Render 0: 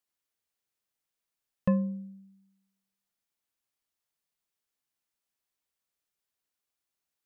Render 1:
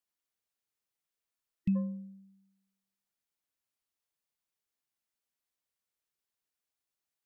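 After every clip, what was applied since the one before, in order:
healed spectral selection 0:01.36–0:01.73, 330–1,900 Hz before
dynamic equaliser 1,100 Hz, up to +5 dB, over −52 dBFS, Q 1.1
level −3.5 dB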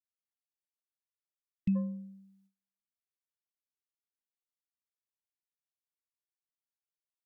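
noise gate with hold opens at −58 dBFS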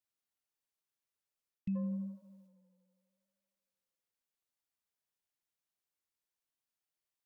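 reversed playback
downward compressor, threshold −36 dBFS, peak gain reduction 11 dB
reversed playback
tape delay 79 ms, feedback 88%, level −12.5 dB, low-pass 2,300 Hz
level +2.5 dB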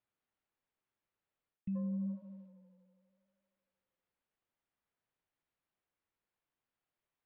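reversed playback
downward compressor 6 to 1, threshold −43 dBFS, peak gain reduction 10 dB
reversed playback
high-frequency loss of the air 450 metres
level +8 dB

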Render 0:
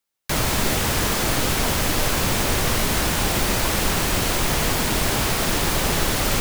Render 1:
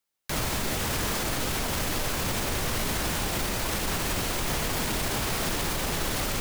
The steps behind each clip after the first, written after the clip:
brickwall limiter −17 dBFS, peak gain reduction 9.5 dB
level −2 dB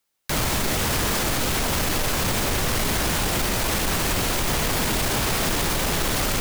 gain into a clipping stage and back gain 26 dB
level +7 dB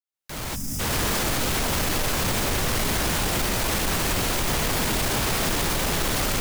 fade in at the beginning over 1.00 s
gain on a spectral selection 0:00.55–0:00.80, 310–4,800 Hz −18 dB
level −1 dB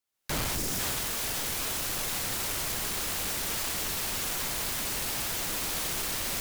sine wavefolder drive 12 dB, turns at −19.5 dBFS
level −7.5 dB

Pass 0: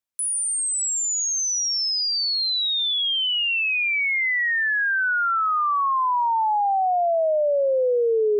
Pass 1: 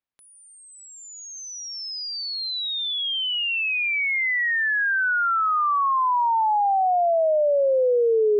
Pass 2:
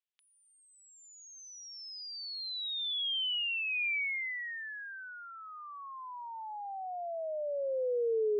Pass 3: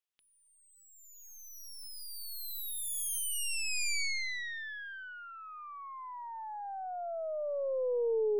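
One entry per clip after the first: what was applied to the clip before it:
high-frequency loss of the air 220 metres; level +1.5 dB
downward compressor 2 to 1, threshold −38 dBFS, peak gain reduction 10.5 dB; band-pass filter sweep 3,100 Hz → 430 Hz, 0:03.65–0:05.32
stylus tracing distortion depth 0.17 ms

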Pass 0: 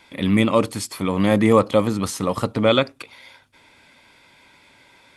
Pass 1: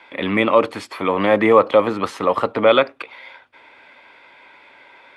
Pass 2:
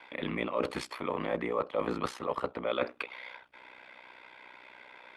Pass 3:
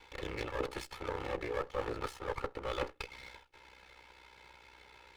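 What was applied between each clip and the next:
three-way crossover with the lows and the highs turned down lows −18 dB, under 350 Hz, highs −23 dB, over 3,100 Hz; in parallel at 0 dB: brickwall limiter −14.5 dBFS, peak gain reduction 8 dB; on the sum: level +2 dB
ring modulation 31 Hz; reversed playback; downward compressor 6 to 1, threshold −26 dBFS, peak gain reduction 16 dB; reversed playback; level −2.5 dB
lower of the sound and its delayed copy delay 2.3 ms; level −4 dB

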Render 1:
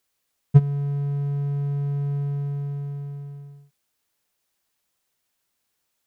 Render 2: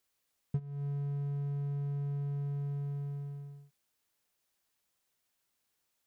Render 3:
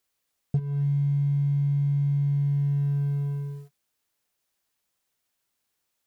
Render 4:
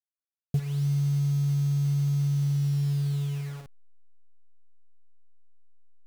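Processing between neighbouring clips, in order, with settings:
downward compressor 8 to 1, threshold −28 dBFS, peak gain reduction 19.5 dB; level −4.5 dB
leveller curve on the samples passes 2; level +5.5 dB
hold until the input has moved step −38.5 dBFS; level −1 dB

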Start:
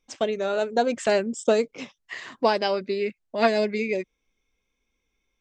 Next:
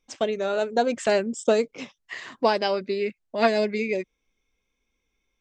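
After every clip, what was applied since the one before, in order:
no processing that can be heard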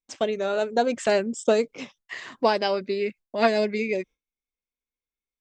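noise gate with hold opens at −46 dBFS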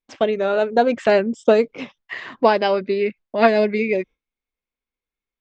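low-pass filter 3,200 Hz 12 dB per octave
level +6 dB

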